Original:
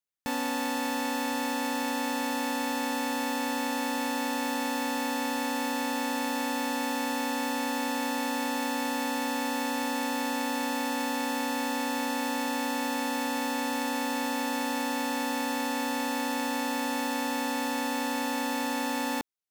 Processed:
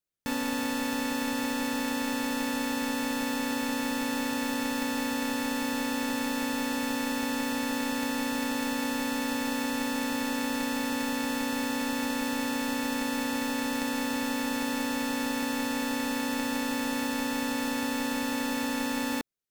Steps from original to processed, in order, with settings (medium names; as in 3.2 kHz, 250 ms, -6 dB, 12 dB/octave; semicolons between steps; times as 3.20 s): peaking EQ 730 Hz -11 dB 0.41 oct; in parallel at -10 dB: sample-and-hold 40×